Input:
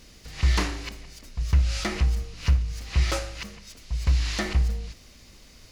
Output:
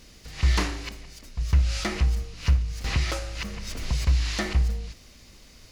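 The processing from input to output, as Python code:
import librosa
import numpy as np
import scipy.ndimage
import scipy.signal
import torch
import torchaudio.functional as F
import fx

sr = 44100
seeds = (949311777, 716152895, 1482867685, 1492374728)

y = fx.band_squash(x, sr, depth_pct=100, at=(2.84, 4.05))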